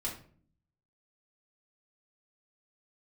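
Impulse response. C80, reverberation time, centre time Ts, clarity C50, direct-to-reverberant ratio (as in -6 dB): 12.5 dB, 0.50 s, 23 ms, 8.0 dB, -5.5 dB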